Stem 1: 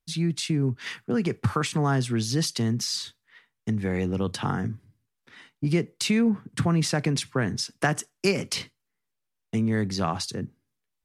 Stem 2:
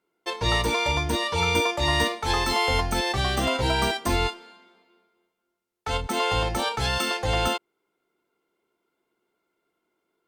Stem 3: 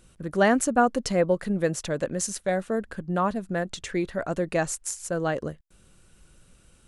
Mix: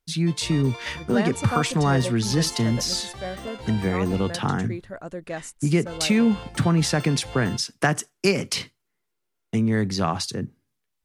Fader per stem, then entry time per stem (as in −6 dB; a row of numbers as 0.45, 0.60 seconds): +3.0, −14.0, −7.5 decibels; 0.00, 0.00, 0.75 seconds